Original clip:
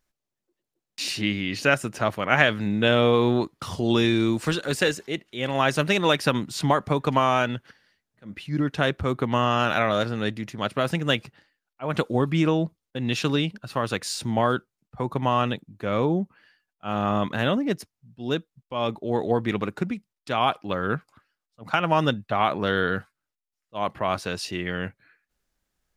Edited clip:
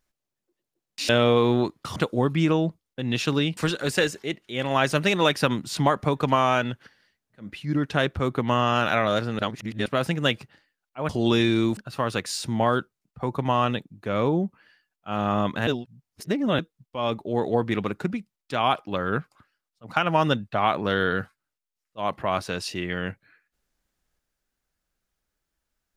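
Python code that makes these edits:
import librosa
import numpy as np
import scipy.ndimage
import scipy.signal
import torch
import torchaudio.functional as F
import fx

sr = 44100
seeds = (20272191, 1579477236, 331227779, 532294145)

y = fx.edit(x, sr, fx.cut(start_s=1.09, length_s=1.77),
    fx.swap(start_s=3.73, length_s=0.68, other_s=11.93, other_length_s=1.61),
    fx.reverse_span(start_s=10.23, length_s=0.47),
    fx.reverse_span(start_s=17.44, length_s=0.92), tone=tone)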